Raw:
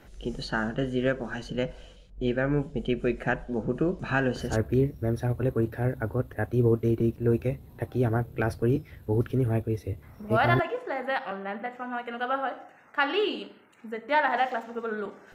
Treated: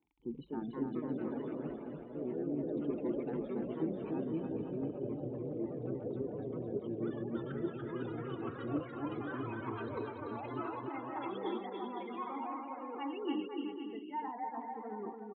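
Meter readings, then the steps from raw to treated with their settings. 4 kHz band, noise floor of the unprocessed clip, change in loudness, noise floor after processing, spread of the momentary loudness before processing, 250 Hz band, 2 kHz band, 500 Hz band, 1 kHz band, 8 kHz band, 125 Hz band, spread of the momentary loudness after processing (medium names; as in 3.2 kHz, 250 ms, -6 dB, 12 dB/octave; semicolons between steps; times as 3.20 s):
-16.5 dB, -53 dBFS, -11.5 dB, -47 dBFS, 10 LU, -7.5 dB, -20.5 dB, -11.0 dB, -11.5 dB, no reading, -17.0 dB, 5 LU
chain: spectral gate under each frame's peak -15 dB strong; gate -39 dBFS, range -20 dB; comb 1.8 ms, depth 47%; dynamic bell 180 Hz, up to +6 dB, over -39 dBFS, Q 0.78; reverse; compression 10:1, threshold -32 dBFS, peak gain reduction 18 dB; reverse; crackle 17 per s -47 dBFS; vowel filter u; ever faster or slower copies 289 ms, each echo +3 st, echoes 3; on a send: bouncing-ball echo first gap 290 ms, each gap 0.75×, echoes 5; on the sum: resampled via 8 kHz; trim +8.5 dB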